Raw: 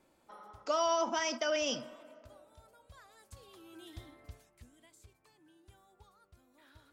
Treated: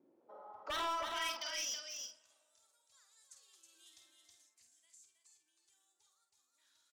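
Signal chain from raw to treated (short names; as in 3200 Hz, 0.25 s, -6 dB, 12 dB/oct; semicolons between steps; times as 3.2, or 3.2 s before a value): HPF 92 Hz; in parallel at -4 dB: soft clip -32.5 dBFS, distortion -10 dB; on the sum: band-pass sweep 300 Hz -> 6700 Hz, 0.02–1.69; wavefolder -33.5 dBFS; doubler 49 ms -7.5 dB; on a send: echo 0.321 s -5.5 dB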